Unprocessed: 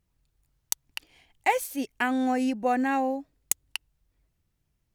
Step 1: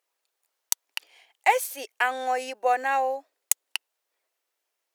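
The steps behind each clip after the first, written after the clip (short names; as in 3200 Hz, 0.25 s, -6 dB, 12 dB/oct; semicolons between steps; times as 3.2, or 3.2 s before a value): inverse Chebyshev high-pass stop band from 180 Hz, stop band 50 dB; gain +3.5 dB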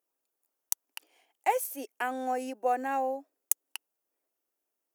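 graphic EQ 250/500/1000/2000/4000/8000 Hz +9/-4/-5/-9/-12/-4 dB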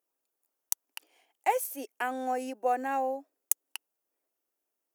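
nothing audible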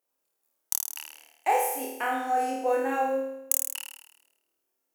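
flutter echo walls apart 4.5 m, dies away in 0.89 s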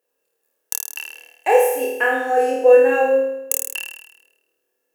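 small resonant body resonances 470/1700/2700 Hz, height 15 dB, ringing for 35 ms; gain +3.5 dB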